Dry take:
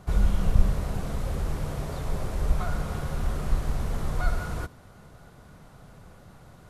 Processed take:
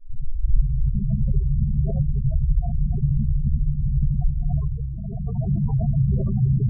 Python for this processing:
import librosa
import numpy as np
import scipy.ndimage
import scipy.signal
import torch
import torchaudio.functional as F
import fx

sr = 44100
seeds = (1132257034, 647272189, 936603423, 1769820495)

y = fx.tape_start_head(x, sr, length_s=0.89)
y = fx.recorder_agc(y, sr, target_db=-14.5, rise_db_per_s=23.0, max_gain_db=30)
y = fx.dereverb_blind(y, sr, rt60_s=0.65)
y = y + 10.0 ** (-7.0 / 20.0) * np.pad(y, (int(274 * sr / 1000.0), 0))[:len(y)]
y = fx.rev_fdn(y, sr, rt60_s=0.76, lf_ratio=1.45, hf_ratio=0.95, size_ms=45.0, drr_db=-1.5)
y = fx.spec_gate(y, sr, threshold_db=-10, keep='strong')
y = fx.brickwall_lowpass(y, sr, high_hz=1200.0)